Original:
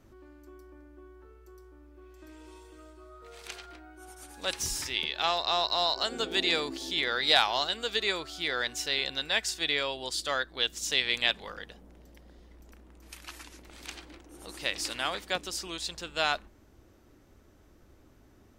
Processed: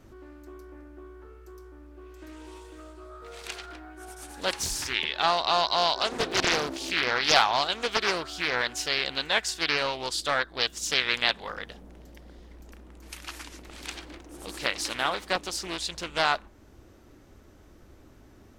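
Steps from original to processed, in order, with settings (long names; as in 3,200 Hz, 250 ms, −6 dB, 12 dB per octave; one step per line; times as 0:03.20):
dynamic equaliser 980 Hz, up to +5 dB, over −44 dBFS, Q 1
in parallel at −1 dB: downward compressor, threshold −38 dBFS, peak gain reduction 20.5 dB
on the sum: highs frequency-modulated by the lows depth 0.66 ms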